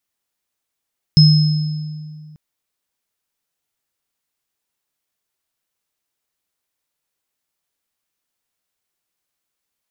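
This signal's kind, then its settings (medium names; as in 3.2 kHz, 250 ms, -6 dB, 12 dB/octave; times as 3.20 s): sine partials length 1.19 s, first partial 153 Hz, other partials 5.16 kHz, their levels -6 dB, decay 2.15 s, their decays 1.27 s, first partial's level -5 dB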